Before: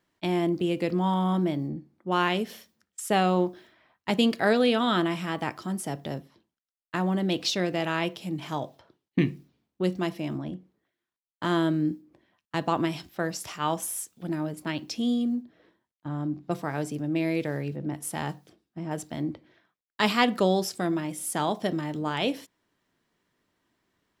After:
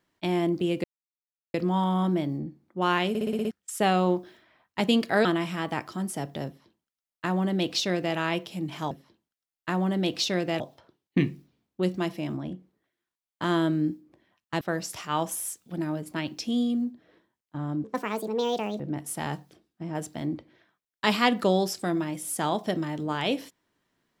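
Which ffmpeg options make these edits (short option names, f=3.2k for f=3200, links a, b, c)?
-filter_complex "[0:a]asplit=15[a][b][c][d][e][f][g][h][i][j][k][l][m][n][o];[a]atrim=end=0.84,asetpts=PTS-STARTPTS,afade=t=out:st=0.836:d=0.004:c=hsin,apad=pad_dur=0.7[p];[b]atrim=start=0.84:end=2.452,asetpts=PTS-STARTPTS,afade=t=in:d=0.004:c=hsin[q];[c]atrim=start=2.388:end=2.452[r];[d]atrim=start=2.388:end=2.452[s];[e]atrim=start=2.388:end=2.452[t];[f]atrim=start=2.388:end=2.452[u];[g]atrim=start=2.388:end=2.452[v];[h]atrim=start=2.388:end=2.452[w];[i]atrim=start=2.808:end=4.552[x];[j]atrim=start=4.948:end=8.612[y];[k]atrim=start=6.168:end=7.862[z];[l]atrim=start=8.608:end=12.622[aa];[m]atrim=start=13.118:end=16.354[ab];[n]atrim=start=16.35:end=17.76,asetpts=PTS-STARTPTS,asetrate=64827,aresample=44100[ac];[o]atrim=start=17.756[ad];[p][q]concat=n=2:v=0:a=1[ae];[ae][r]acrossfade=d=0.004:c1=hsin:c2=hsin[af];[af][s]acrossfade=d=0.004:c1=hsin:c2=hsin[ag];[ag][t]acrossfade=d=0.004:c1=hsin:c2=hsin[ah];[ah][u]acrossfade=d=0.004:c1=hsin:c2=hsin[ai];[ai][v]acrossfade=d=0.004:c1=hsin:c2=hsin[aj];[aj][w]acrossfade=d=0.004:c1=hsin:c2=hsin[ak];[ak][x]acrossfade=d=0.004:c1=hsin:c2=hsin[al];[al][y]acrossfade=d=0.004:c1=hsin:c2=hsin[am];[am][z]acrossfade=d=0.004:c1=hsin:c2=hsin[an];[an][aa]acrossfade=d=0.004:c1=hsin:c2=hsin[ao];[ao][ab]acrossfade=d=0.004:c1=hsin:c2=hsin[ap];[ap][ac]acrossfade=d=0.004:c1=hsin:c2=hsin[aq];[aq][ad]acrossfade=d=0.004:c1=hsin:c2=hsin"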